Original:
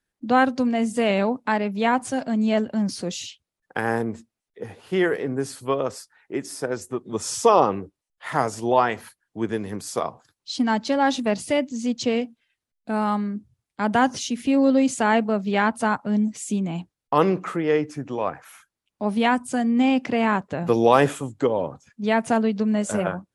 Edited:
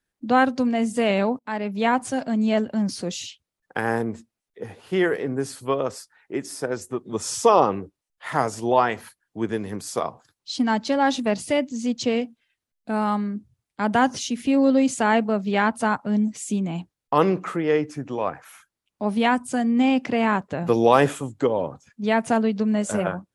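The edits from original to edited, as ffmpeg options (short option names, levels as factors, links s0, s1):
-filter_complex "[0:a]asplit=2[s0][s1];[s0]atrim=end=1.39,asetpts=PTS-STARTPTS,afade=t=out:st=1.386:d=0.004:c=hsin:silence=0.0944061[s2];[s1]atrim=start=1.39,asetpts=PTS-STARTPTS,afade=t=in:d=0.49:c=qsin:silence=0.0944061[s3];[s2][s3]concat=n=2:v=0:a=1"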